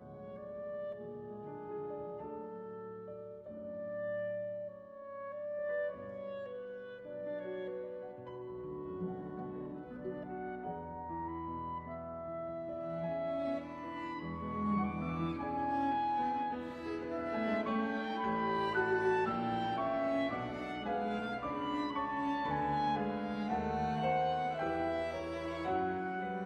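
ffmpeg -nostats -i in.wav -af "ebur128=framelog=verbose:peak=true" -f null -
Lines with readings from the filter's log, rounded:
Integrated loudness:
  I:         -37.8 LUFS
  Threshold: -47.9 LUFS
Loudness range:
  LRA:         9.0 LU
  Threshold: -57.8 LUFS
  LRA low:   -43.4 LUFS
  LRA high:  -34.5 LUFS
True peak:
  Peak:      -21.0 dBFS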